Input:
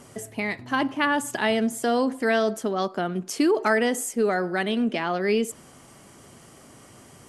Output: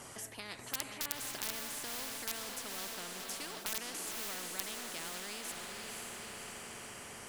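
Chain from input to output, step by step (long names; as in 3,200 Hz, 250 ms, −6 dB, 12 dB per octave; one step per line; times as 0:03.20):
wrap-around overflow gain 12 dB
feedback delay with all-pass diffusion 532 ms, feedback 51%, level −9 dB
every bin compressed towards the loudest bin 4 to 1
level +1.5 dB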